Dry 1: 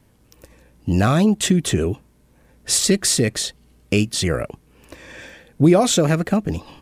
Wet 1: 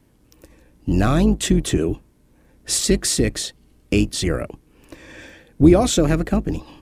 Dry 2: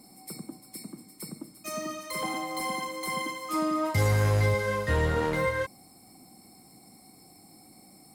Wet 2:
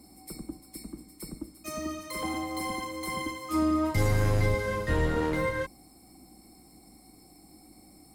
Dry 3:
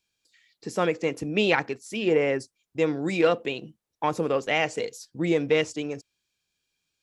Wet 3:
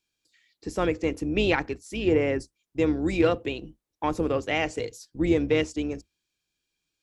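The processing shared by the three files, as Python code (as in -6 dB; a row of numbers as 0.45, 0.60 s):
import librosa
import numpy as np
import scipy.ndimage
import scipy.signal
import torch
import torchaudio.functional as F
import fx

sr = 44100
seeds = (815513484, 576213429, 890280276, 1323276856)

y = fx.octave_divider(x, sr, octaves=2, level_db=-3.0)
y = fx.peak_eq(y, sr, hz=310.0, db=6.5, octaves=0.45)
y = y * 10.0 ** (-2.5 / 20.0)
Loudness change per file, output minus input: -0.5, -1.5, -0.5 LU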